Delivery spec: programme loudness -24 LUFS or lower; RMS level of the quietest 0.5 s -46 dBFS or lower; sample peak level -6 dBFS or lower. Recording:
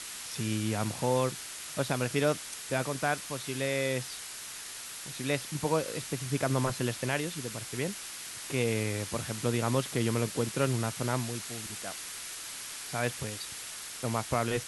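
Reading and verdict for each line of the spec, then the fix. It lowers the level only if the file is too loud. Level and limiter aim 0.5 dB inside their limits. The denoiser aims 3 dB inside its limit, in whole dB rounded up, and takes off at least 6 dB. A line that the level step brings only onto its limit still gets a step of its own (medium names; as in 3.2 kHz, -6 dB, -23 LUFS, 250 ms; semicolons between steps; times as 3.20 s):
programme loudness -32.5 LUFS: pass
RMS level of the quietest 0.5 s -42 dBFS: fail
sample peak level -13.5 dBFS: pass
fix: noise reduction 7 dB, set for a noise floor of -42 dBFS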